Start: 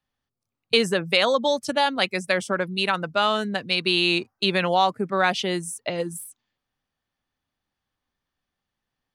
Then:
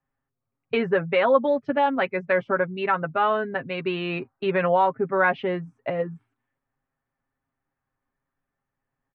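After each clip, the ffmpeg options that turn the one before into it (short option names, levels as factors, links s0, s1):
-af "lowpass=f=2000:w=0.5412,lowpass=f=2000:w=1.3066,aecho=1:1:7.4:0.61"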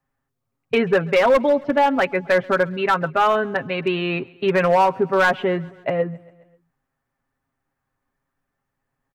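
-af "volume=5.96,asoftclip=hard,volume=0.168,aecho=1:1:134|268|402|536:0.0631|0.0379|0.0227|0.0136,volume=1.78"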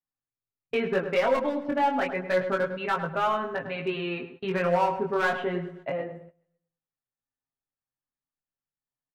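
-filter_complex "[0:a]flanger=delay=17.5:depth=6.2:speed=0.29,asplit=2[s0][s1];[s1]adelay=103,lowpass=f=1900:p=1,volume=0.376,asplit=2[s2][s3];[s3]adelay=103,lowpass=f=1900:p=1,volume=0.34,asplit=2[s4][s5];[s5]adelay=103,lowpass=f=1900:p=1,volume=0.34,asplit=2[s6][s7];[s7]adelay=103,lowpass=f=1900:p=1,volume=0.34[s8];[s0][s2][s4][s6][s8]amix=inputs=5:normalize=0,agate=range=0.178:threshold=0.00891:ratio=16:detection=peak,volume=0.531"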